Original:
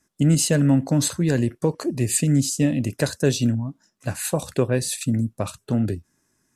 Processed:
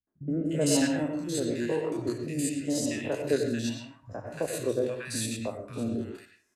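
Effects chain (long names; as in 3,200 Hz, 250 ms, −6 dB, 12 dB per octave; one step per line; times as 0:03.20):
spectrum averaged block by block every 50 ms
bass and treble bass −14 dB, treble −4 dB
three-band delay without the direct sound lows, mids, highs 70/300 ms, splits 150/1,200 Hz
on a send at −4 dB: convolution reverb RT60 0.40 s, pre-delay 93 ms
on the sum: rotating-speaker cabinet horn 0.9 Hz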